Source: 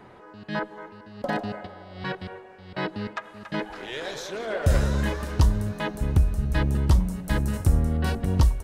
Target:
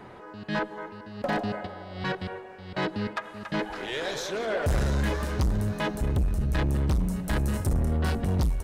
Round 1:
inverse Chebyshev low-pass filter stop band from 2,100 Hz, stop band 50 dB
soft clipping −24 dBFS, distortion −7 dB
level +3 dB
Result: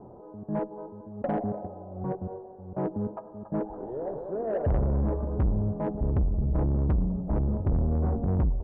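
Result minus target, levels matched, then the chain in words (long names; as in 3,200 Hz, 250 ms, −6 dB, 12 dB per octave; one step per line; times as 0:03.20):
2,000 Hz band −18.5 dB
soft clipping −24 dBFS, distortion −7 dB
level +3 dB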